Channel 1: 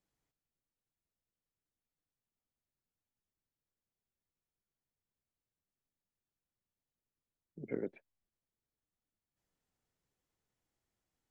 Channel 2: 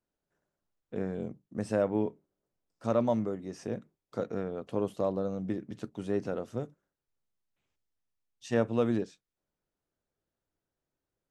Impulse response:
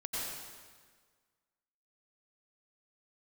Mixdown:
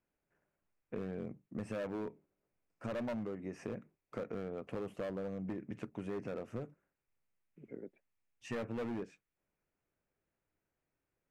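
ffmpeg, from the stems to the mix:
-filter_complex "[0:a]equalizer=frequency=240:width=0.36:gain=5.5,volume=-14dB[link_01];[1:a]highshelf=frequency=3000:width_type=q:width=3:gain=-7,asoftclip=type=hard:threshold=-28dB,volume=0dB[link_02];[link_01][link_02]amix=inputs=2:normalize=0,acompressor=threshold=-37dB:ratio=6"

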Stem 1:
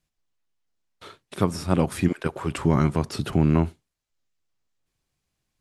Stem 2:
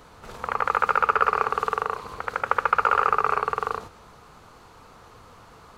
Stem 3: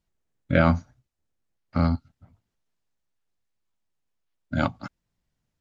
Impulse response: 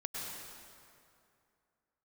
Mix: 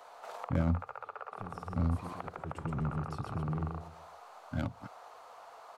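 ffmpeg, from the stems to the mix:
-filter_complex "[0:a]asoftclip=type=tanh:threshold=-21.5dB,volume=-11dB,afade=type=in:start_time=2.24:duration=0.4:silence=0.446684,asplit=2[link_01][link_02];[link_02]volume=-5.5dB[link_03];[1:a]acompressor=threshold=-28dB:ratio=6,highpass=frequency=680:width_type=q:width=3.8,volume=-6.5dB[link_04];[2:a]crystalizer=i=2:c=0,adynamicsmooth=sensitivity=2.5:basefreq=1400,volume=-10.5dB[link_05];[link_03]aecho=0:1:124|248|372|496:1|0.31|0.0961|0.0298[link_06];[link_01][link_04][link_05][link_06]amix=inputs=4:normalize=0,equalizer=frequency=97:width=2.1:gain=6.5,acrossover=split=490[link_07][link_08];[link_08]acompressor=threshold=-41dB:ratio=6[link_09];[link_07][link_09]amix=inputs=2:normalize=0"

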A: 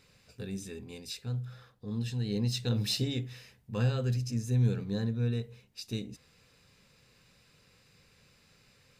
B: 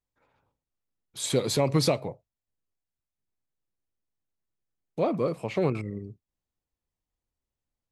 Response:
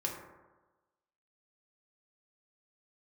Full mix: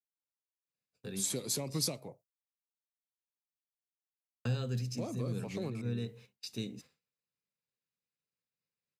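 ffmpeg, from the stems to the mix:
-filter_complex "[0:a]agate=range=-8dB:threshold=-52dB:ratio=16:detection=peak,adelay=650,volume=-1dB,asplit=3[link_01][link_02][link_03];[link_01]atrim=end=1.88,asetpts=PTS-STARTPTS,afade=type=out:start_time=1.876:duration=0.004:curve=hsin[link_04];[link_02]atrim=start=1.88:end=4.45,asetpts=PTS-STARTPTS,volume=0[link_05];[link_03]atrim=start=4.45,asetpts=PTS-STARTPTS,afade=type=in:duration=0.004:curve=hsin[link_06];[link_04][link_05][link_06]concat=n=3:v=0:a=1[link_07];[1:a]aexciter=amount=4:drive=1.4:freq=5000,volume=-9.5dB,asplit=2[link_08][link_09];[link_09]apad=whole_len=425252[link_10];[link_07][link_10]sidechaincompress=threshold=-40dB:ratio=8:attack=39:release=206[link_11];[link_11][link_08]amix=inputs=2:normalize=0,agate=range=-33dB:threshold=-56dB:ratio=3:detection=peak,acrossover=split=300|3000[link_12][link_13][link_14];[link_13]acompressor=threshold=-43dB:ratio=3[link_15];[link_12][link_15][link_14]amix=inputs=3:normalize=0,highpass=140"

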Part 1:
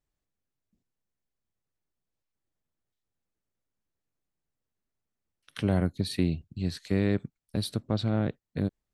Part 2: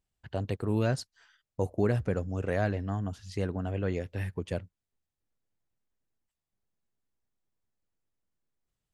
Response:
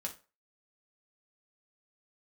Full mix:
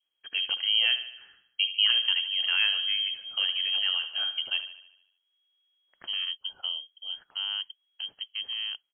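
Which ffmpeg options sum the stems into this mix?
-filter_complex "[0:a]adelay=450,volume=-7dB[link_01];[1:a]adynamicequalizer=threshold=0.00355:dfrequency=1900:dqfactor=0.7:tfrequency=1900:tqfactor=0.7:attack=5:release=100:ratio=0.375:range=1.5:mode=cutabove:tftype=highshelf,volume=2dB,asplit=3[link_02][link_03][link_04];[link_03]volume=-18dB[link_05];[link_04]volume=-11.5dB[link_06];[2:a]atrim=start_sample=2205[link_07];[link_05][link_07]afir=irnorm=-1:irlink=0[link_08];[link_06]aecho=0:1:75|150|225|300|375|450|525|600:1|0.53|0.281|0.149|0.0789|0.0418|0.0222|0.0117[link_09];[link_01][link_02][link_08][link_09]amix=inputs=4:normalize=0,lowpass=frequency=2800:width_type=q:width=0.5098,lowpass=frequency=2800:width_type=q:width=0.6013,lowpass=frequency=2800:width_type=q:width=0.9,lowpass=frequency=2800:width_type=q:width=2.563,afreqshift=-3300"

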